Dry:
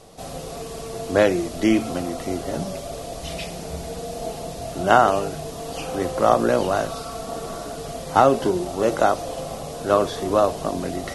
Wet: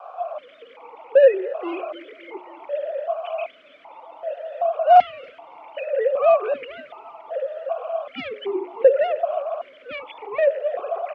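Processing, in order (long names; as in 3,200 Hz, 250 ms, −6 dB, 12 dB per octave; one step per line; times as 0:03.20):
three sine waves on the formant tracks
parametric band 1,700 Hz +3 dB 1.4 octaves
mains-hum notches 60/120/180/240/300/360/420 Hz
in parallel at 0 dB: brickwall limiter −17 dBFS, peak gain reduction 12.5 dB
on the sum: harmonic generator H 5 −16 dB, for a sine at −2.5 dBFS
noise in a band 500–1,400 Hz −32 dBFS
dead-zone distortion −44 dBFS
on a send: repeating echo 278 ms, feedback 51%, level −20.5 dB
on the sum: formant filter that steps through the vowels 2.6 Hz
level +1.5 dB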